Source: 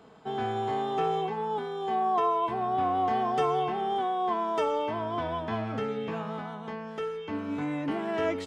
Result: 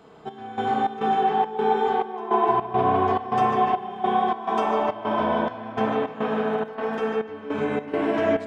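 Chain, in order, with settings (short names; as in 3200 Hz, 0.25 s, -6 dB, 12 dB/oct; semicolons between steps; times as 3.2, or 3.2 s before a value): compressor, threshold -26 dBFS, peak gain reduction 5 dB; spring tank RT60 2.6 s, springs 32 ms, chirp 50 ms, DRR -1 dB; 6.32–7.05 crackle 14/s -> 43/s -45 dBFS; on a send: tape echo 0.149 s, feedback 89%, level -4.5 dB, low-pass 3900 Hz; on the sum: step gate "xx..xx.xxx.x" 104 bpm -12 dB; gain +2.5 dB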